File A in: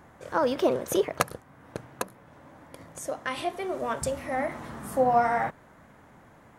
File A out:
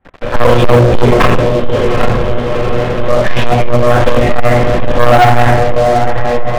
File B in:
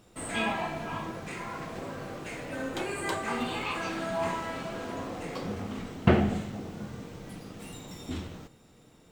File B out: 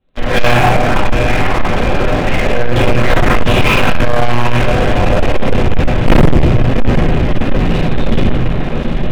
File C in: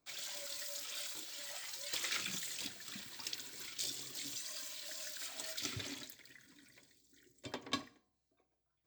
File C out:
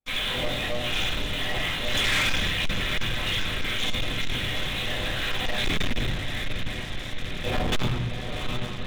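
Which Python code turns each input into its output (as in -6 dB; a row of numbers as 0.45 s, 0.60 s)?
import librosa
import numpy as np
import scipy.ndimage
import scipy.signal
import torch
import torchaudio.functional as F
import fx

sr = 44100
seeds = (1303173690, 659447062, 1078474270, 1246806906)

y = fx.peak_eq(x, sr, hz=1200.0, db=-4.0, octaves=0.5)
y = fx.lpc_monotone(y, sr, seeds[0], pitch_hz=120.0, order=8)
y = fx.echo_diffused(y, sr, ms=770, feedback_pct=72, wet_db=-10.5)
y = fx.room_shoebox(y, sr, seeds[1], volume_m3=150.0, walls='mixed', distance_m=2.1)
y = fx.leveller(y, sr, passes=5)
y = F.gain(torch.from_numpy(y), -2.0).numpy()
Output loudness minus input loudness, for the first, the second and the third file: +17.5 LU, +19.0 LU, +14.5 LU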